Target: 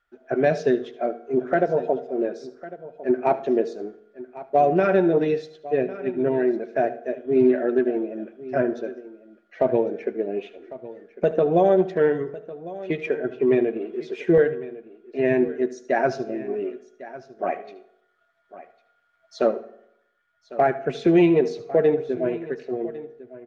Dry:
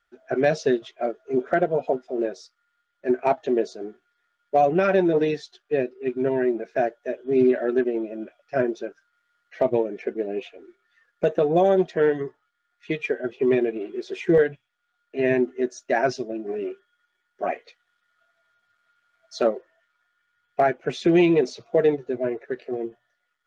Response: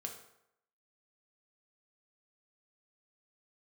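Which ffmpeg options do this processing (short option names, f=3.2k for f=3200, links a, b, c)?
-filter_complex "[0:a]highshelf=f=3.1k:g=-9.5,aecho=1:1:1102:0.141,asplit=2[a][b];[1:a]atrim=start_sample=2205,adelay=74[c];[b][c]afir=irnorm=-1:irlink=0,volume=-12dB[d];[a][d]amix=inputs=2:normalize=0,volume=1dB"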